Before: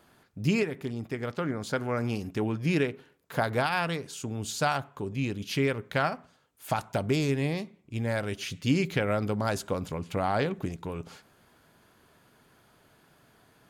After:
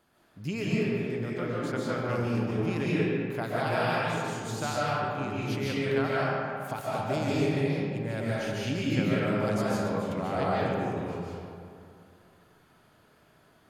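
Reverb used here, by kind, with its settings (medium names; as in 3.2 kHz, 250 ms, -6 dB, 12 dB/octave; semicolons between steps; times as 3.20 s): algorithmic reverb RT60 2.4 s, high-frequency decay 0.5×, pre-delay 105 ms, DRR -7.5 dB; trim -8 dB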